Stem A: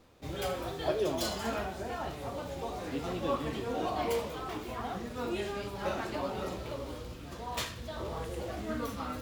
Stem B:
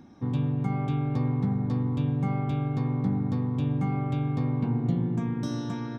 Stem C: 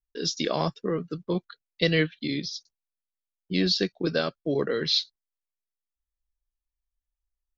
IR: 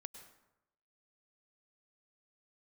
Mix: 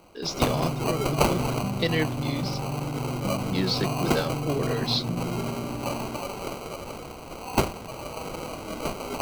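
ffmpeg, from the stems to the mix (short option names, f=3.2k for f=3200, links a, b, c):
-filter_complex "[0:a]aemphasis=mode=production:type=riaa,acrusher=samples=25:mix=1:aa=0.000001,volume=2.5dB[a];[1:a]lowpass=1.3k,adelay=200,volume=-4dB[b];[2:a]volume=-3dB[c];[a][b][c]amix=inputs=3:normalize=0"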